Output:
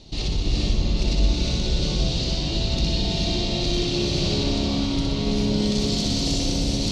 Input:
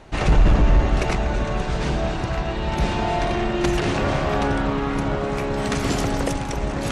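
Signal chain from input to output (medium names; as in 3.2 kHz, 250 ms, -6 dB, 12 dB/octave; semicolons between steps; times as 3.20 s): FFT filter 270 Hz 0 dB, 1.6 kHz -20 dB, 4.3 kHz +14 dB, 9.8 kHz -7 dB; peak limiter -19 dBFS, peak gain reduction 12 dB; on a send: flutter echo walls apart 10.6 m, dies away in 0.77 s; on the sum: gated-style reverb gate 470 ms rising, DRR -1.5 dB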